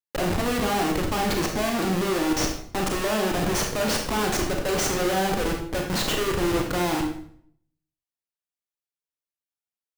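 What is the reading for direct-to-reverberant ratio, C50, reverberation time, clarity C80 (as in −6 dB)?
1.5 dB, 5.5 dB, 0.60 s, 8.5 dB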